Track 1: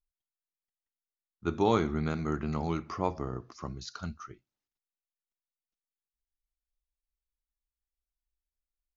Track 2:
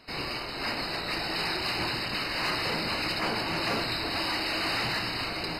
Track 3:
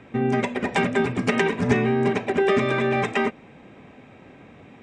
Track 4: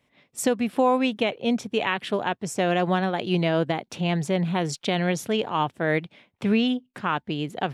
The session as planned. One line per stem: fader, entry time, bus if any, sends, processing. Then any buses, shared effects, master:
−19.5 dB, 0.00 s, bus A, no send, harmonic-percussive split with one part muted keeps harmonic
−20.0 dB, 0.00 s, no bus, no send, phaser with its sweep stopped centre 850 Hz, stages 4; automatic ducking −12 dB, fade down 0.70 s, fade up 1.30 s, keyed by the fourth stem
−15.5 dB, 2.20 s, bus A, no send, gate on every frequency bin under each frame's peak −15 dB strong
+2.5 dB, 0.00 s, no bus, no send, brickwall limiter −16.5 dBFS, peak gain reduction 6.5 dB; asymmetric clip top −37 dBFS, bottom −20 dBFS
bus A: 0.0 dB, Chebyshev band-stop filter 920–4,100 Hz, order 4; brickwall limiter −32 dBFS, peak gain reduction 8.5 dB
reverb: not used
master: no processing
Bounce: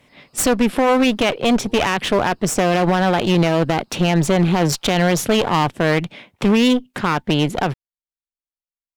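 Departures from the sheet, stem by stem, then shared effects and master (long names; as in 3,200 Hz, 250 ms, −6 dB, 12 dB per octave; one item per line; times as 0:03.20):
stem 3: muted
stem 4 +2.5 dB → +13.5 dB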